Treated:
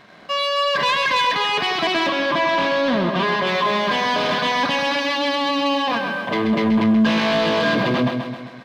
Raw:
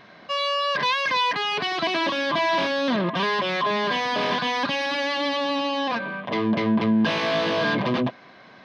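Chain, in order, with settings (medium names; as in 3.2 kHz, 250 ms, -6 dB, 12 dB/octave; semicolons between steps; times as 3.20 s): feedback delay 132 ms, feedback 54%, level -7 dB; waveshaping leveller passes 1; 2.08–3.47 s: treble shelf 5.7 kHz -9 dB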